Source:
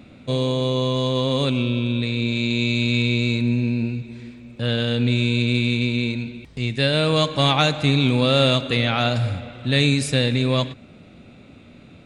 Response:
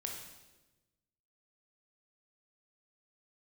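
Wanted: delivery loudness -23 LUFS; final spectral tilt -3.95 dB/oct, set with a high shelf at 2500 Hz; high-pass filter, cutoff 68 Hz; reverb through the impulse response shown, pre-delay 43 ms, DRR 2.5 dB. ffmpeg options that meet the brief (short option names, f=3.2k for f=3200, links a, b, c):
-filter_complex "[0:a]highpass=68,highshelf=f=2.5k:g=4.5,asplit=2[a][b];[1:a]atrim=start_sample=2205,adelay=43[c];[b][c]afir=irnorm=-1:irlink=0,volume=-2dB[d];[a][d]amix=inputs=2:normalize=0,volume=-5.5dB"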